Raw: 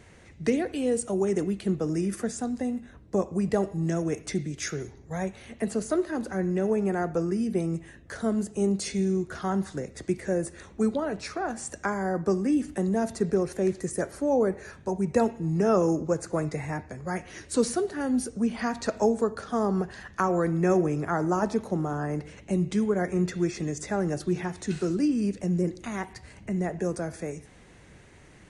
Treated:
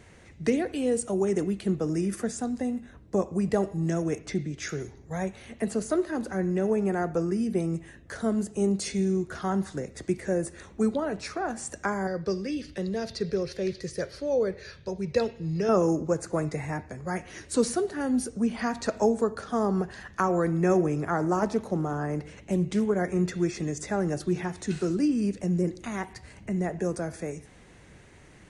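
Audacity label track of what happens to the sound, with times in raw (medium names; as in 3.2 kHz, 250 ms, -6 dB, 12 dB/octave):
4.180000	4.690000	distance through air 74 m
12.070000	15.690000	FFT filter 140 Hz 0 dB, 260 Hz -10 dB, 520 Hz +1 dB, 770 Hz -11 dB, 4.7 kHz +11 dB, 7.5 kHz -11 dB
21.100000	22.910000	loudspeaker Doppler distortion depth 0.15 ms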